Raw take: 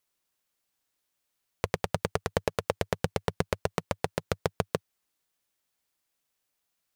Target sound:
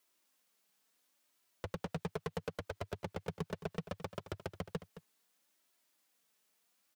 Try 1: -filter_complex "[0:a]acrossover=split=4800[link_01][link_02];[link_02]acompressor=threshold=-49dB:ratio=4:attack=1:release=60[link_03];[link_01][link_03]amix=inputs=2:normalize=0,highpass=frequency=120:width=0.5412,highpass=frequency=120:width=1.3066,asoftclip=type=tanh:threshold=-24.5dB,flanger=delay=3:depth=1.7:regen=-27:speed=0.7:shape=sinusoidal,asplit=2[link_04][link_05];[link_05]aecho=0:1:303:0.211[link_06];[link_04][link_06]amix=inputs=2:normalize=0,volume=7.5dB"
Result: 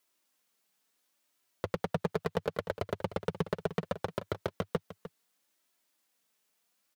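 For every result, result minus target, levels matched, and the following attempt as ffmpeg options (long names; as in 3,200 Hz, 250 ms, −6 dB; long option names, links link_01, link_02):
echo 85 ms late; soft clipping: distortion −5 dB
-filter_complex "[0:a]acrossover=split=4800[link_01][link_02];[link_02]acompressor=threshold=-49dB:ratio=4:attack=1:release=60[link_03];[link_01][link_03]amix=inputs=2:normalize=0,highpass=frequency=120:width=0.5412,highpass=frequency=120:width=1.3066,asoftclip=type=tanh:threshold=-24.5dB,flanger=delay=3:depth=1.7:regen=-27:speed=0.7:shape=sinusoidal,asplit=2[link_04][link_05];[link_05]aecho=0:1:218:0.211[link_06];[link_04][link_06]amix=inputs=2:normalize=0,volume=7.5dB"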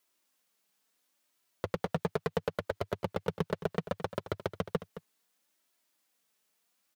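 soft clipping: distortion −5 dB
-filter_complex "[0:a]acrossover=split=4800[link_01][link_02];[link_02]acompressor=threshold=-49dB:ratio=4:attack=1:release=60[link_03];[link_01][link_03]amix=inputs=2:normalize=0,highpass=frequency=120:width=0.5412,highpass=frequency=120:width=1.3066,asoftclip=type=tanh:threshold=-35.5dB,flanger=delay=3:depth=1.7:regen=-27:speed=0.7:shape=sinusoidal,asplit=2[link_04][link_05];[link_05]aecho=0:1:218:0.211[link_06];[link_04][link_06]amix=inputs=2:normalize=0,volume=7.5dB"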